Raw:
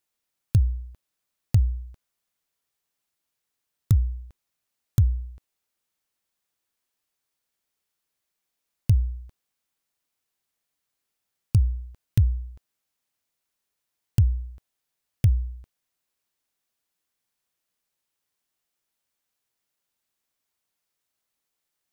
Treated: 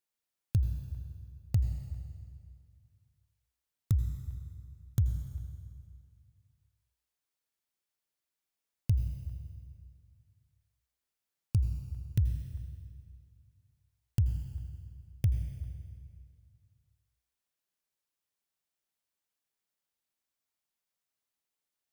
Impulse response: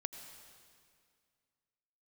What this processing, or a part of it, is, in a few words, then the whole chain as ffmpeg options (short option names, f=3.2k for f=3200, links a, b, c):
stairwell: -filter_complex "[1:a]atrim=start_sample=2205[a];[0:a][a]afir=irnorm=-1:irlink=0,volume=-6dB"